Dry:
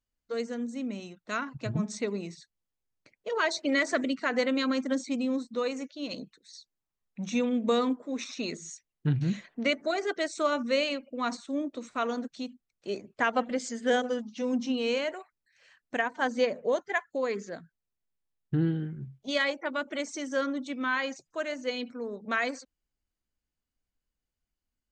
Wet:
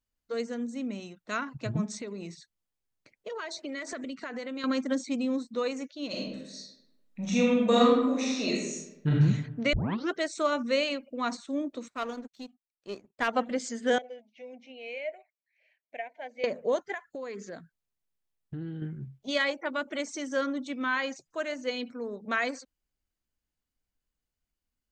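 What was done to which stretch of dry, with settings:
1.94–4.64 compressor, threshold -34 dBFS
6.08–9.19 reverb throw, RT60 0.96 s, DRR -4.5 dB
9.73 tape start 0.41 s
11.88–13.28 power-law curve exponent 1.4
13.98–16.44 double band-pass 1200 Hz, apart 1.8 oct
16.94–18.82 compressor 4:1, threshold -36 dBFS

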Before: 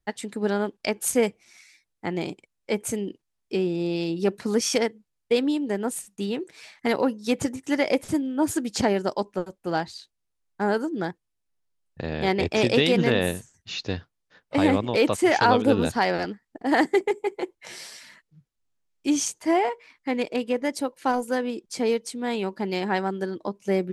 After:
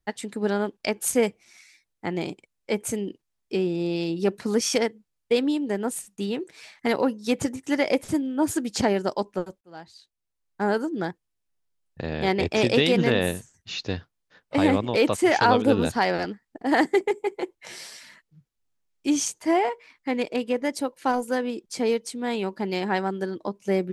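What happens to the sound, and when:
9.61–10.63 fade in

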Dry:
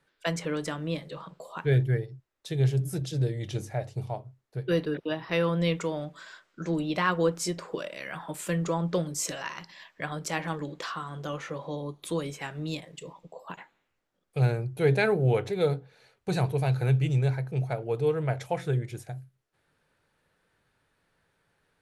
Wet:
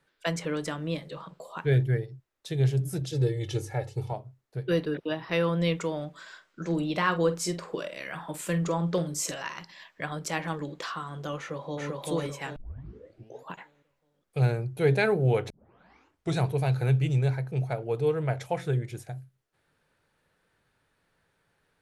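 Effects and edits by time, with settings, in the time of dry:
3.12–4.13 comb 2.3 ms, depth 84%
6.27–9.34 doubler 47 ms -12.5 dB
11.38–11.87 echo throw 0.39 s, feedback 40%, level 0 dB
12.56 tape start 0.94 s
15.5 tape start 0.90 s

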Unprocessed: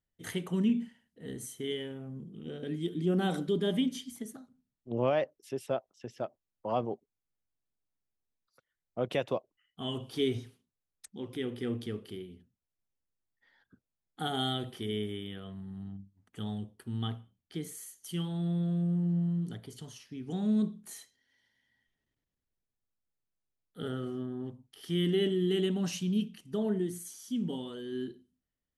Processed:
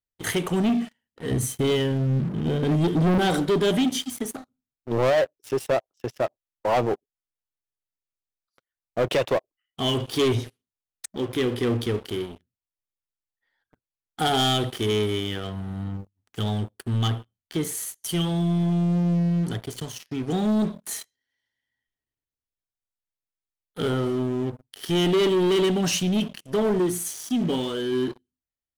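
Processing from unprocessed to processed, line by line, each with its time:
1.31–3.18 tone controls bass +12 dB, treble -1 dB
whole clip: sample leveller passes 2; bell 200 Hz -7 dB 0.75 oct; sample leveller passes 2

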